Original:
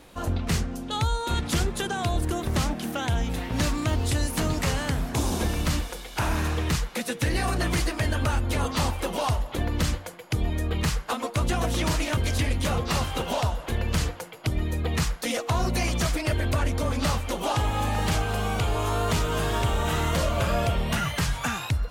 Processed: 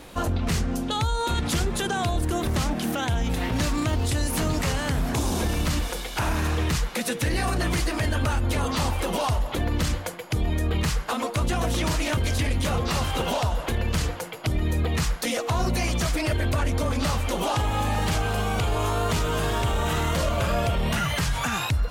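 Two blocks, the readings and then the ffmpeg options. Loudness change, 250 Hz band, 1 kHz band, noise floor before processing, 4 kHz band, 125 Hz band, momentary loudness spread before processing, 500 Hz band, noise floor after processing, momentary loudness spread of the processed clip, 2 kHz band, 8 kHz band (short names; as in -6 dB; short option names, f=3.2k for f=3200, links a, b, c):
+1.0 dB, +1.5 dB, +1.5 dB, -40 dBFS, +1.5 dB, +1.0 dB, 3 LU, +1.5 dB, -34 dBFS, 2 LU, +1.0 dB, +1.0 dB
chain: -af "alimiter=limit=-23.5dB:level=0:latency=1:release=54,volume=6.5dB"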